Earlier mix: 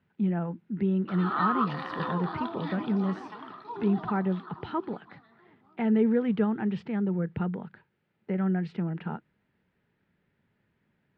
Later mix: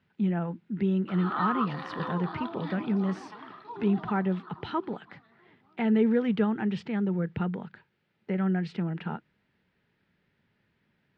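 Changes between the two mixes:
speech: add treble shelf 3 kHz +11 dB; background: send -6.5 dB

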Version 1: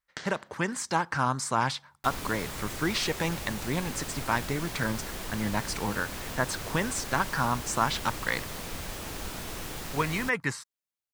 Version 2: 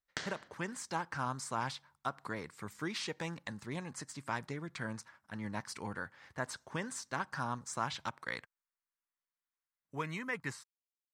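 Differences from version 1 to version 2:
speech -10.0 dB; second sound: muted

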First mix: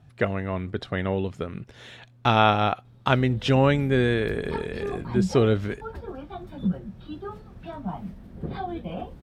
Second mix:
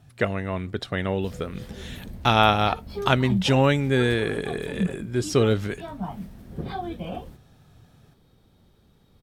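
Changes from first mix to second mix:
background: entry -1.85 s; master: remove low-pass 2.8 kHz 6 dB/octave

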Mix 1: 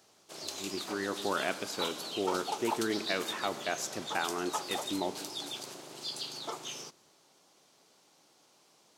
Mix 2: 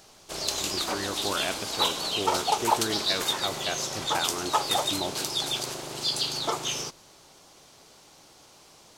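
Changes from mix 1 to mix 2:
background +10.0 dB; master: remove Chebyshev high-pass 200 Hz, order 2

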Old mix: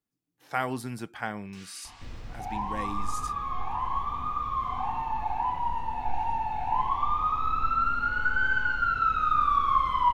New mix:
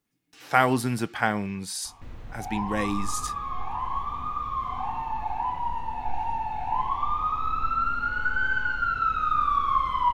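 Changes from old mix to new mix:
speech +9.0 dB; first sound: entry -1.20 s

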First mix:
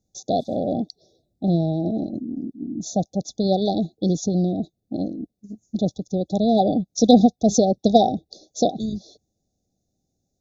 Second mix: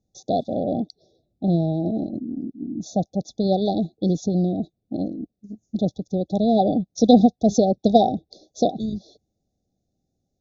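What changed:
background -4.0 dB; master: add distance through air 110 m

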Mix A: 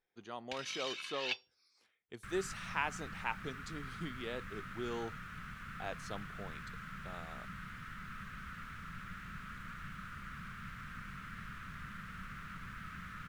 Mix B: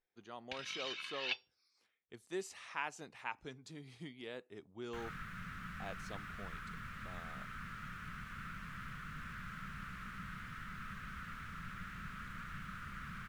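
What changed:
speech -4.5 dB; first sound: add low-pass 4.7 kHz 12 dB/octave; second sound: entry +2.70 s

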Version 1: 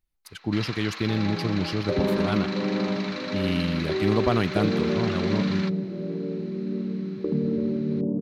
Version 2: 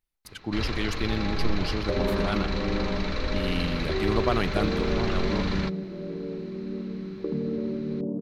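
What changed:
first sound: remove high-pass 1 kHz 12 dB/octave; master: add bass shelf 310 Hz -7 dB

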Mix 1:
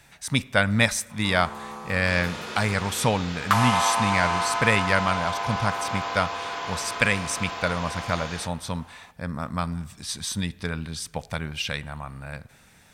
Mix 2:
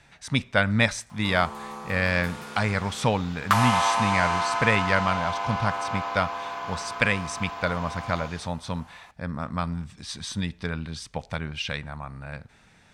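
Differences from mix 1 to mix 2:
speech: add distance through air 75 m; second sound -7.5 dB; reverb: off

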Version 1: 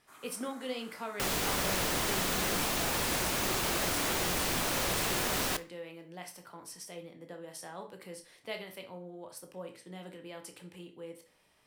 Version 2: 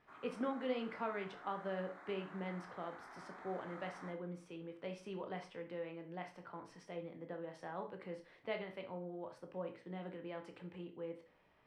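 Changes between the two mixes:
second sound: muted; master: add low-pass 2 kHz 12 dB/octave

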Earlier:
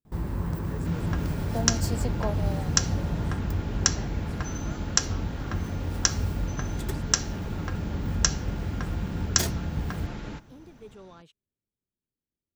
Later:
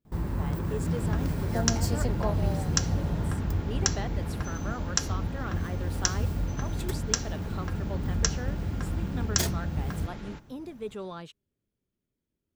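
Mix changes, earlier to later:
speech +10.0 dB; second sound -4.0 dB

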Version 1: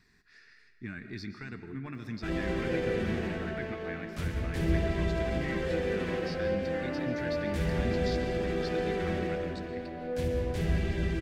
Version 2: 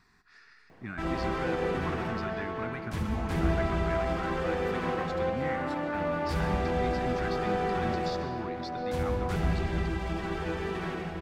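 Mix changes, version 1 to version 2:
background: entry -1.25 s; master: add high-order bell 1 kHz +10 dB 1.1 oct

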